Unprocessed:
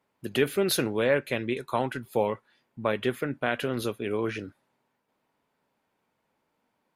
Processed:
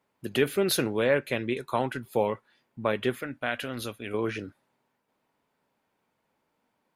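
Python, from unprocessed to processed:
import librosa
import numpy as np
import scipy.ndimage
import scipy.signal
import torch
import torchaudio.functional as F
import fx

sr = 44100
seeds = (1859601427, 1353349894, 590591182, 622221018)

y = fx.graphic_eq_15(x, sr, hz=(160, 400, 1000), db=(-10, -10, -4), at=(3.22, 4.14))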